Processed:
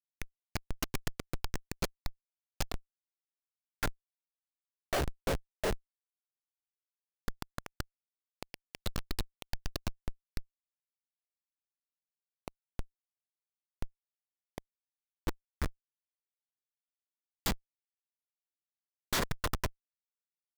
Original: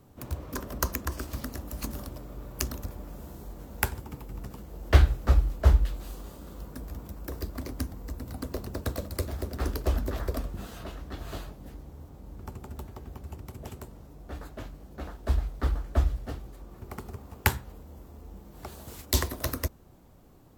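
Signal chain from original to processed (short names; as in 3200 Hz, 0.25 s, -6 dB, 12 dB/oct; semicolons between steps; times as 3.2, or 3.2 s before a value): LFO high-pass sine 0.13 Hz 440–4300 Hz; Schmitt trigger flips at -29.5 dBFS; gain +10.5 dB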